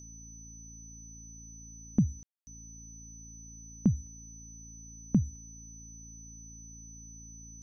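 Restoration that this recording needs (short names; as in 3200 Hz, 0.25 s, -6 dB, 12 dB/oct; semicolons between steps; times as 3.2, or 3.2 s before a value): de-hum 55.7 Hz, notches 5; notch 6000 Hz, Q 30; room tone fill 2.23–2.47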